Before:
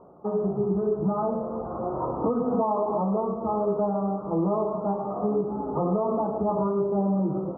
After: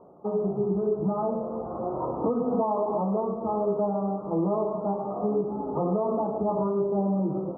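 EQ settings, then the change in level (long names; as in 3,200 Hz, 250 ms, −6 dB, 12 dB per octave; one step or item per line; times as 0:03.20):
low-pass filter 1,100 Hz 12 dB per octave
low-shelf EQ 100 Hz −7 dB
0.0 dB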